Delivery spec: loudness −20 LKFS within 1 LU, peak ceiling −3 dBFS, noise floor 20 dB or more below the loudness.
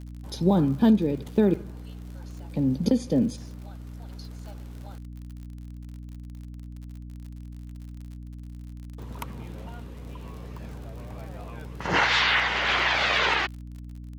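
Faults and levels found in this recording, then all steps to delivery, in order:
crackle rate 53 per second; mains hum 60 Hz; hum harmonics up to 300 Hz; level of the hum −37 dBFS; integrated loudness −23.5 LKFS; sample peak −9.0 dBFS; target loudness −20.0 LKFS
→ click removal
hum removal 60 Hz, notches 5
level +3.5 dB

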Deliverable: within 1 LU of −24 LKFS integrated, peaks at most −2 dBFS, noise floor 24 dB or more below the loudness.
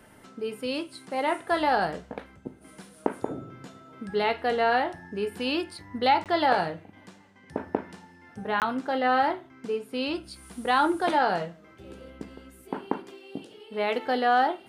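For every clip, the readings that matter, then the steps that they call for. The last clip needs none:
number of dropouts 2; longest dropout 18 ms; integrated loudness −27.5 LKFS; sample peak −7.5 dBFS; target loudness −24.0 LKFS
→ repair the gap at 0:06.24/0:08.60, 18 ms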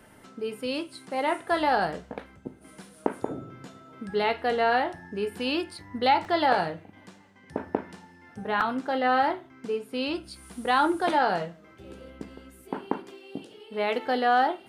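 number of dropouts 0; integrated loudness −27.5 LKFS; sample peak −7.5 dBFS; target loudness −24.0 LKFS
→ level +3.5 dB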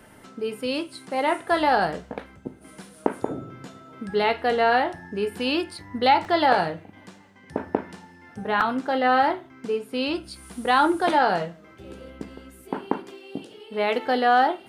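integrated loudness −24.0 LKFS; sample peak −4.0 dBFS; background noise floor −50 dBFS

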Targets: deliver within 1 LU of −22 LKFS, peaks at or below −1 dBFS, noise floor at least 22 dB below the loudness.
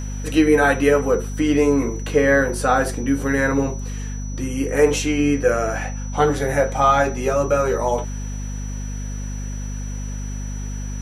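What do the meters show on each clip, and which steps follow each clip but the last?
mains hum 50 Hz; hum harmonics up to 250 Hz; level of the hum −25 dBFS; interfering tone 5,900 Hz; level of the tone −39 dBFS; integrated loudness −20.5 LKFS; sample peak −3.5 dBFS; target loudness −22.0 LKFS
→ mains-hum notches 50/100/150/200/250 Hz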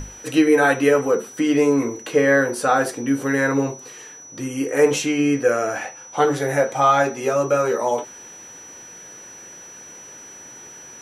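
mains hum none found; interfering tone 5,900 Hz; level of the tone −39 dBFS
→ notch filter 5,900 Hz, Q 30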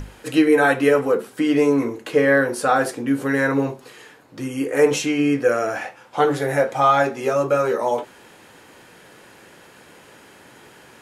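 interfering tone none found; integrated loudness −19.5 LKFS; sample peak −3.5 dBFS; target loudness −22.0 LKFS
→ level −2.5 dB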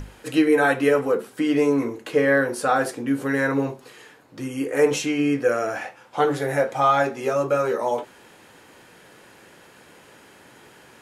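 integrated loudness −22.0 LKFS; sample peak −6.0 dBFS; background noise floor −51 dBFS

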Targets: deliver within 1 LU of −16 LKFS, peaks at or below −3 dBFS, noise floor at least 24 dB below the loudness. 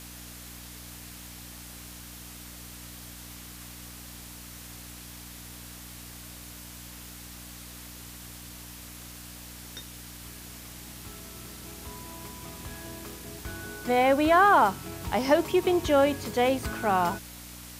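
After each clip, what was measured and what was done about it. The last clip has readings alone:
mains hum 60 Hz; hum harmonics up to 300 Hz; level of the hum −45 dBFS; background noise floor −45 dBFS; target noise floor −49 dBFS; integrated loudness −25.0 LKFS; sample peak −9.5 dBFS; target loudness −16.0 LKFS
→ hum removal 60 Hz, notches 5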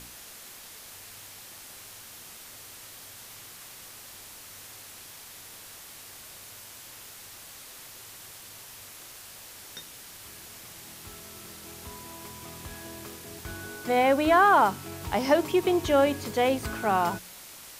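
mains hum none found; background noise floor −47 dBFS; target noise floor −49 dBFS
→ broadband denoise 6 dB, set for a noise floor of −47 dBFS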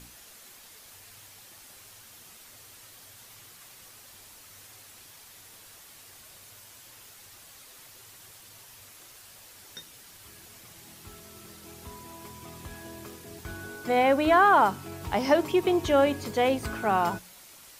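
background noise floor −51 dBFS; integrated loudness −24.5 LKFS; sample peak −9.5 dBFS; target loudness −16.0 LKFS
→ level +8.5 dB
brickwall limiter −3 dBFS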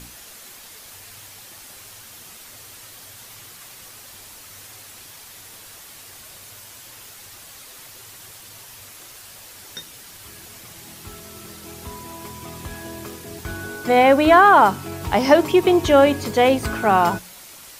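integrated loudness −16.0 LKFS; sample peak −3.0 dBFS; background noise floor −43 dBFS

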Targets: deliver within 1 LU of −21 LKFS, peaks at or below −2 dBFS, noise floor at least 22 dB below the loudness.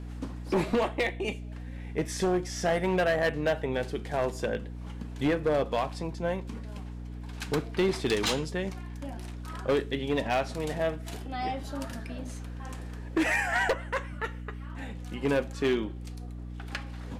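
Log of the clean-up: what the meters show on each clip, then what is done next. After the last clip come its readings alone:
share of clipped samples 1.2%; peaks flattened at −20.5 dBFS; mains hum 60 Hz; hum harmonics up to 300 Hz; level of the hum −37 dBFS; integrated loudness −30.5 LKFS; sample peak −20.5 dBFS; target loudness −21.0 LKFS
→ clipped peaks rebuilt −20.5 dBFS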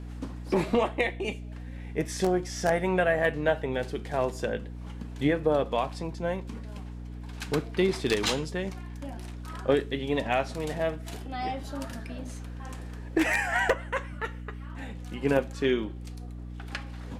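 share of clipped samples 0.0%; mains hum 60 Hz; hum harmonics up to 300 Hz; level of the hum −37 dBFS
→ mains-hum notches 60/120/180/240/300 Hz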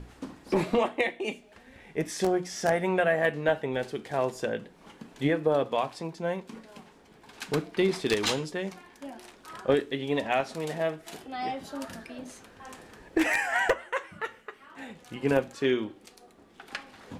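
mains hum none found; integrated loudness −29.0 LKFS; sample peak −11.0 dBFS; target loudness −21.0 LKFS
→ level +8 dB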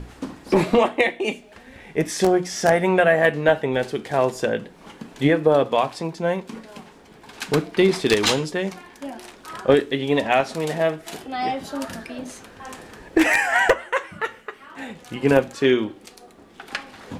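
integrated loudness −21.0 LKFS; sample peak −3.0 dBFS; background noise floor −48 dBFS

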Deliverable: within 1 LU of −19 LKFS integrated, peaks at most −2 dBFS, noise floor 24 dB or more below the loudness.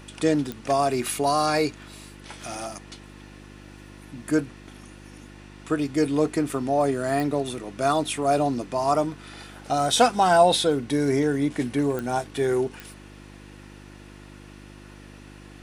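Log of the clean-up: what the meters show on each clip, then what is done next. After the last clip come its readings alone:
number of clicks 4; mains hum 50 Hz; hum harmonics up to 350 Hz; level of the hum −45 dBFS; integrated loudness −24.0 LKFS; sample peak −4.5 dBFS; target loudness −19.0 LKFS
→ click removal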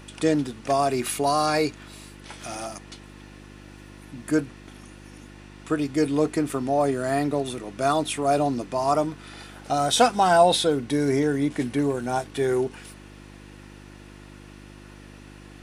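number of clicks 0; mains hum 50 Hz; hum harmonics up to 350 Hz; level of the hum −45 dBFS
→ hum removal 50 Hz, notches 7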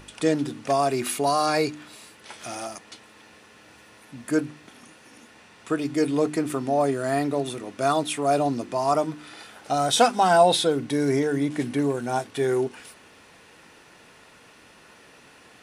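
mains hum none found; integrated loudness −24.0 LKFS; sample peak −4.5 dBFS; target loudness −19.0 LKFS
→ level +5 dB
brickwall limiter −2 dBFS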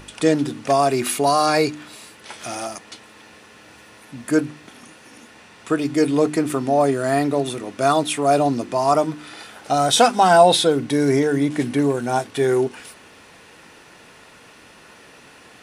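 integrated loudness −19.0 LKFS; sample peak −2.0 dBFS; background noise floor −47 dBFS

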